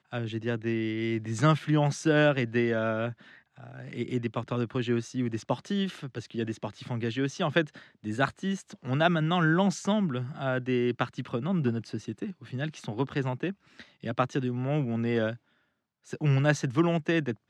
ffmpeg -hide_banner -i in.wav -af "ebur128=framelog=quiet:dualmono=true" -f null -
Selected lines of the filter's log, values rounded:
Integrated loudness:
  I:         -26.0 LUFS
  Threshold: -36.4 LUFS
Loudness range:
  LRA:         5.1 LU
  Threshold: -46.8 LUFS
  LRA low:   -29.4 LUFS
  LRA high:  -24.4 LUFS